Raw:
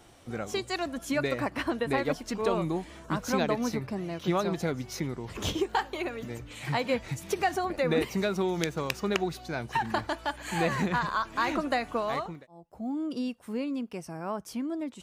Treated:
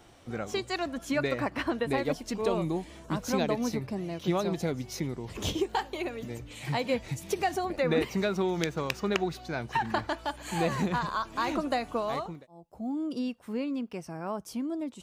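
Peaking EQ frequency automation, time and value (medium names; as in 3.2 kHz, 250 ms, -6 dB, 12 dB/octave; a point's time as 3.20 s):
peaking EQ -5.5 dB 1 oct
11 kHz
from 1.85 s 1.4 kHz
from 7.77 s 11 kHz
from 10.21 s 1.8 kHz
from 13.19 s 10 kHz
from 14.27 s 1.8 kHz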